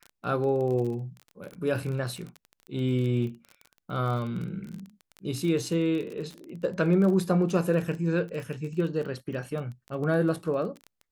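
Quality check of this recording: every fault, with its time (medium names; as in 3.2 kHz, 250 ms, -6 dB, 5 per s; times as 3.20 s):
crackle 26 per s -33 dBFS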